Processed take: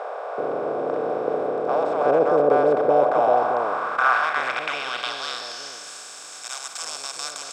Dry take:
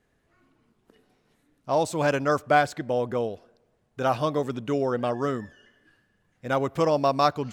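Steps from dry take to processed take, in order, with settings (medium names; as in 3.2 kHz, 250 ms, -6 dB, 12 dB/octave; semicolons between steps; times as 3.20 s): spectral levelling over time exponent 0.2; bands offset in time highs, lows 380 ms, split 640 Hz; band-pass sweep 480 Hz -> 7.1 kHz, 2.84–5.92 s; trim +5.5 dB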